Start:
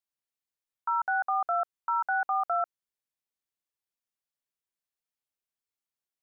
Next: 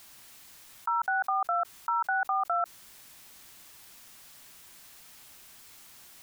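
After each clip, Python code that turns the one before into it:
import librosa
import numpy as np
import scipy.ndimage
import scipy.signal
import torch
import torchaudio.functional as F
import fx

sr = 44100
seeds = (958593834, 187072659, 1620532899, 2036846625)

y = fx.peak_eq(x, sr, hz=480.0, db=-5.5, octaves=0.76)
y = fx.env_flatten(y, sr, amount_pct=70)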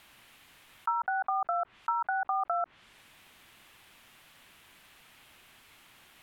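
y = fx.high_shelf_res(x, sr, hz=4000.0, db=-9.0, q=1.5)
y = fx.env_lowpass_down(y, sr, base_hz=1100.0, full_db=-24.5)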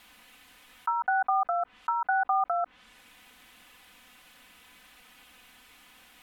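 y = x + 0.83 * np.pad(x, (int(4.0 * sr / 1000.0), 0))[:len(x)]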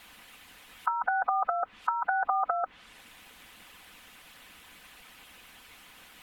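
y = fx.hpss(x, sr, part='harmonic', gain_db=-11)
y = y * 10.0 ** (8.5 / 20.0)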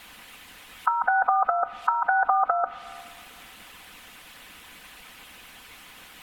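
y = fx.rev_plate(x, sr, seeds[0], rt60_s=2.5, hf_ratio=0.75, predelay_ms=0, drr_db=14.5)
y = y * 10.0 ** (5.5 / 20.0)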